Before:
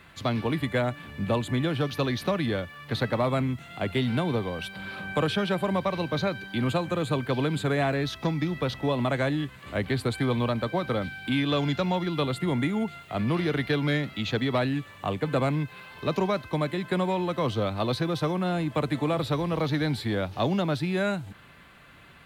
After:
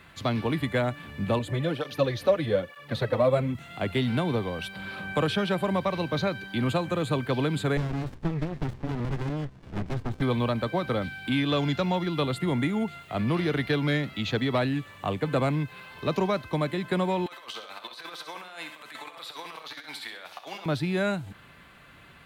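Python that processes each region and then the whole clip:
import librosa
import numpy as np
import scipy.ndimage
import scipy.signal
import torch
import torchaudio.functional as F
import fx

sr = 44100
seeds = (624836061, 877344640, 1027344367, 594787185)

y = fx.chain(x, sr, fx.peak_eq(hz=530.0, db=12.0, octaves=0.38),
    fx.flanger_cancel(hz=1.1, depth_ms=6.1), at=(1.39, 3.55))
y = fx.chain(y, sr, fx.air_absorb(metres=200.0),
    fx.running_max(window=65), at=(7.77, 10.22))
y = fx.chain(y, sr, fx.highpass(hz=1100.0, slope=12),
    fx.over_compress(threshold_db=-41.0, ratio=-0.5),
    fx.echo_feedback(ms=65, feedback_pct=41, wet_db=-9), at=(17.26, 20.66))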